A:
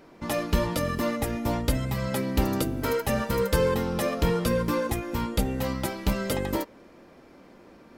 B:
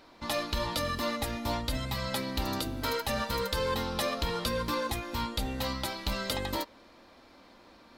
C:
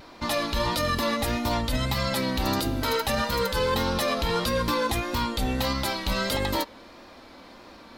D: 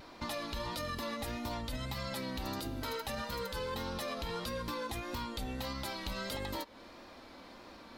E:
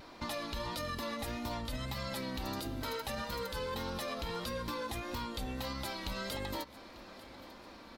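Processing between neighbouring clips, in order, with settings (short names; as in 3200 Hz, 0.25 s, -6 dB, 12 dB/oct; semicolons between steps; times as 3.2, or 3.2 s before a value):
limiter -17.5 dBFS, peak gain reduction 8 dB; fifteen-band EQ 160 Hz -10 dB, 400 Hz -7 dB, 1000 Hz +3 dB, 4000 Hz +11 dB; gain -2.5 dB
vibrato 1.6 Hz 39 cents; limiter -24.5 dBFS, peak gain reduction 10 dB; gain +8.5 dB
compressor 3:1, threshold -33 dBFS, peak gain reduction 9 dB; gain -5 dB
feedback echo 0.894 s, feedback 37%, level -18.5 dB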